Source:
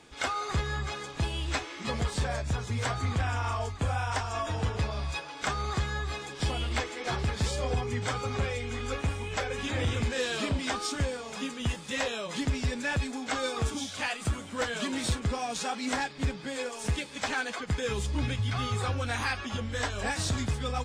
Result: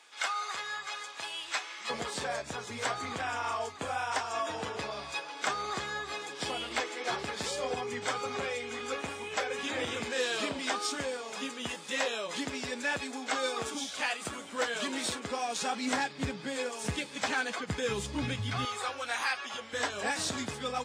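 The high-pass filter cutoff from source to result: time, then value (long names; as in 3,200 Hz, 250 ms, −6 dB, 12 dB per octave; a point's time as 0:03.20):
900 Hz
from 0:01.90 310 Hz
from 0:15.62 140 Hz
from 0:18.65 590 Hz
from 0:19.73 250 Hz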